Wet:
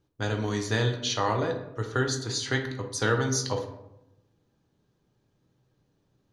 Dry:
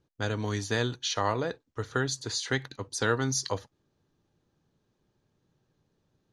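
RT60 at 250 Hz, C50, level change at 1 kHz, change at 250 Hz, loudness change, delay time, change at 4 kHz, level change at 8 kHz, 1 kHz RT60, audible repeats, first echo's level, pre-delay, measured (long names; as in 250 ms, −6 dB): 1.1 s, 7.5 dB, +2.0 dB, +2.5 dB, +2.5 dB, no echo audible, +1.5 dB, +1.0 dB, 0.80 s, no echo audible, no echo audible, 4 ms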